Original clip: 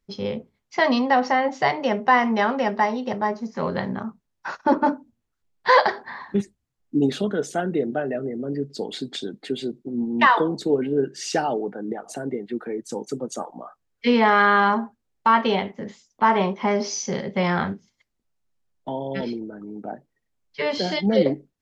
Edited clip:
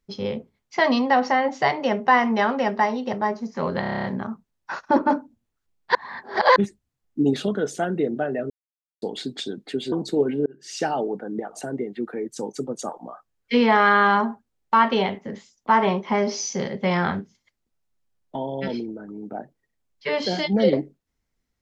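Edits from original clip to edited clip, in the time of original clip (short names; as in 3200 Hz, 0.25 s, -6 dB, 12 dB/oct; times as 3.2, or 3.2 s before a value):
3.8 stutter 0.03 s, 9 plays
5.71–6.32 reverse
8.26–8.78 mute
9.68–10.45 cut
10.99–11.65 fade in equal-power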